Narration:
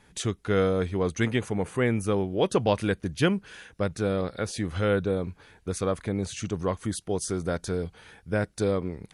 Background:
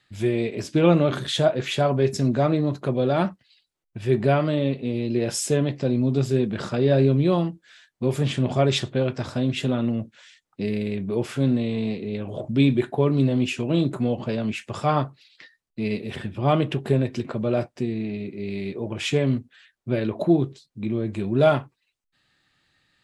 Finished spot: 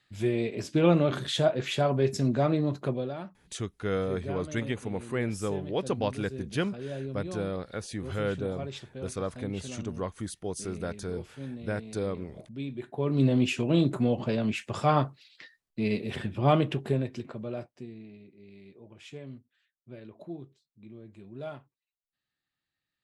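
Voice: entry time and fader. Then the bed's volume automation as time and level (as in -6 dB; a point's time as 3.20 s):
3.35 s, -6.0 dB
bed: 2.88 s -4.5 dB
3.21 s -18 dB
12.72 s -18 dB
13.26 s -2 dB
16.49 s -2 dB
18.36 s -21.5 dB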